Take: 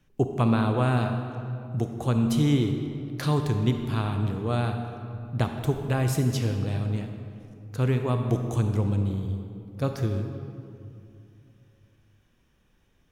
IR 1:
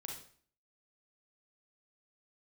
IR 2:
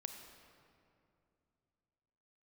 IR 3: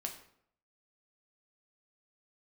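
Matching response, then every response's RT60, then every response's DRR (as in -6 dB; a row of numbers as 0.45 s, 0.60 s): 2; 0.50 s, 2.6 s, 0.65 s; -0.5 dB, 5.0 dB, 2.5 dB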